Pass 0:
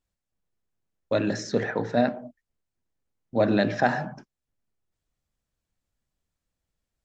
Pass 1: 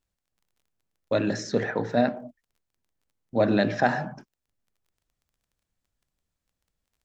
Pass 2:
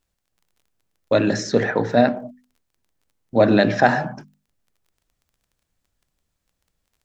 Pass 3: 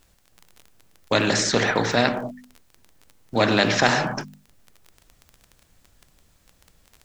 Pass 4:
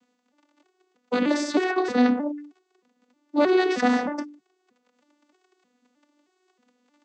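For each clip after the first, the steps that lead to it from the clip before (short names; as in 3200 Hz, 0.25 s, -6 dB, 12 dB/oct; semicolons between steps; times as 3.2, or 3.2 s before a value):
crackle 18/s -55 dBFS
notches 50/100/150/200/250 Hz; gain +7 dB
spectral compressor 2:1
arpeggiated vocoder minor triad, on B3, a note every 0.313 s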